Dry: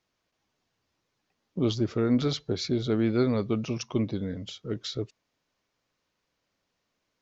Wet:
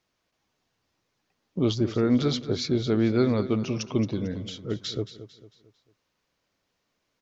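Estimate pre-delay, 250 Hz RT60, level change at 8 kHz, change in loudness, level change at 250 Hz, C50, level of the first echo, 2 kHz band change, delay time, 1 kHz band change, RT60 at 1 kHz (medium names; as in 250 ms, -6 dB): no reverb, no reverb, no reading, +2.5 dB, +2.5 dB, no reverb, -13.5 dB, +2.0 dB, 224 ms, +2.0 dB, no reverb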